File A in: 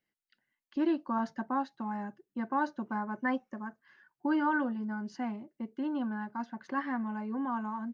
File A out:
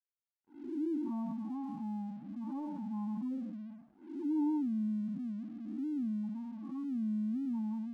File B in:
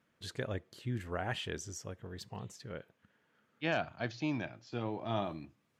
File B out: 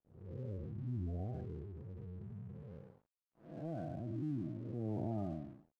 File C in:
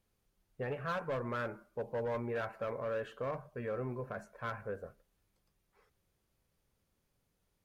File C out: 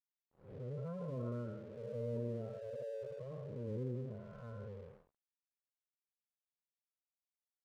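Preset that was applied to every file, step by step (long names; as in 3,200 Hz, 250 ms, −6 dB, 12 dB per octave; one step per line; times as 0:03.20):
spectrum smeared in time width 337 ms
Butterworth low-pass 1,700 Hz 36 dB per octave
gate on every frequency bin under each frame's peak −10 dB strong
tilt shelving filter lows +8.5 dB, about 650 Hz
dead-zone distortion −58.5 dBFS
level −3 dB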